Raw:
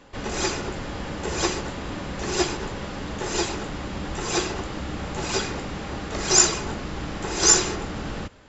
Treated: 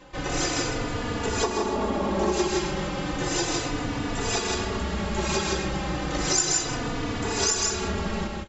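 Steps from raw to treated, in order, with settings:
0:01.43–0:02.32: flat-topped bell 510 Hz +10 dB 2.7 octaves
on a send: loudspeakers that aren't time-aligned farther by 44 metres −10 dB, 55 metres −3 dB
on the sum: downward compressor 6 to 1, threshold −23 dBFS, peak gain reduction 12 dB
barber-pole flanger 3.4 ms −0.33 Hz
level +4.5 dB

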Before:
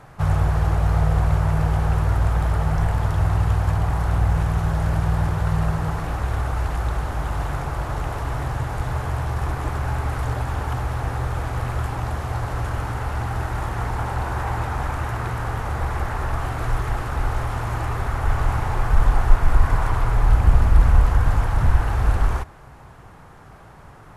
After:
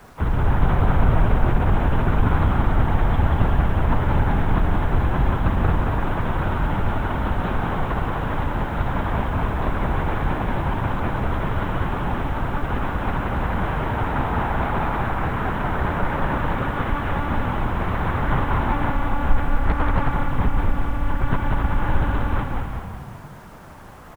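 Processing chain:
one-pitch LPC vocoder at 8 kHz 290 Hz
harmonic generator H 6 −40 dB, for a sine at −3 dBFS
echo with shifted repeats 183 ms, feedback 57%, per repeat −35 Hz, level −3.5 dB
bit reduction 9 bits
single-tap delay 244 ms −8.5 dB
0:19.65–0:20.11: highs frequency-modulated by the lows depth 0.51 ms

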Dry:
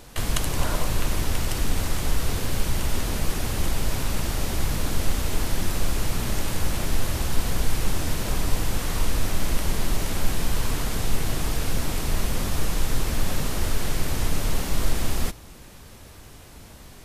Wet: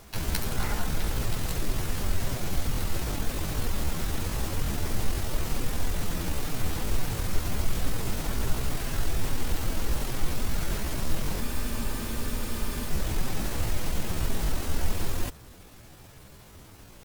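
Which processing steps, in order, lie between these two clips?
pitch shifter +6 semitones
frozen spectrum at 0:11.42, 1.49 s
level −4 dB

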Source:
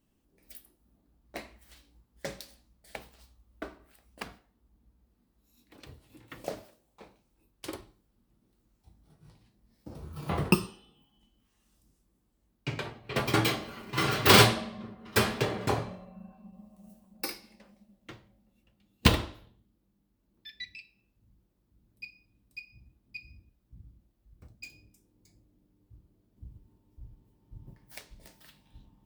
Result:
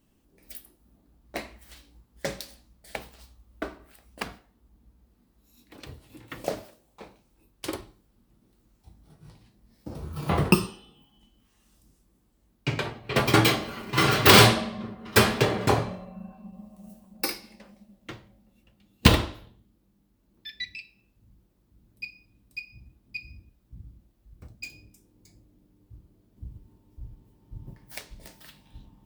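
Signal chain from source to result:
boost into a limiter +7.5 dB
level −1 dB

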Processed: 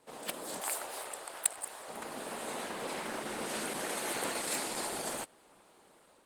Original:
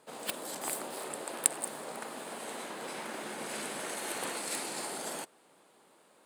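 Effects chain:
0:00.60–0:01.89: high-pass filter 610 Hz 12 dB per octave
automatic gain control gain up to 4.5 dB
level −1.5 dB
Opus 16 kbit/s 48,000 Hz

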